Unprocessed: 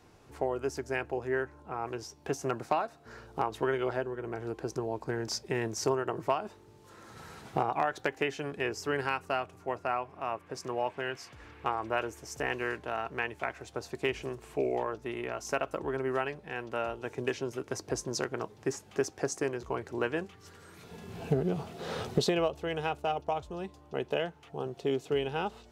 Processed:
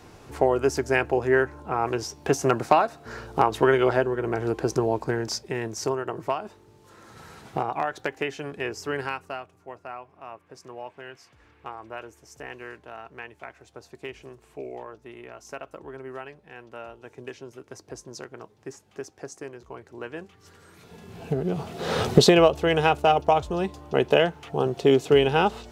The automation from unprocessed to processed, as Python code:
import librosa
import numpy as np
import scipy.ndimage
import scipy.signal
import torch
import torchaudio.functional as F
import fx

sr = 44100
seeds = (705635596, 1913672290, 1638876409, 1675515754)

y = fx.gain(x, sr, db=fx.line((4.89, 10.5), (5.51, 2.0), (9.03, 2.0), (9.54, -6.5), (19.96, -6.5), (20.51, 0.5), (21.28, 0.5), (22.04, 12.0)))